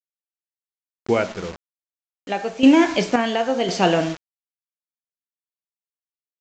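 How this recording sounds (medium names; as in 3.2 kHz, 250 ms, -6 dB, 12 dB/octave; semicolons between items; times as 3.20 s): a quantiser's noise floor 6-bit, dither none; random-step tremolo 1.9 Hz, depth 75%; µ-law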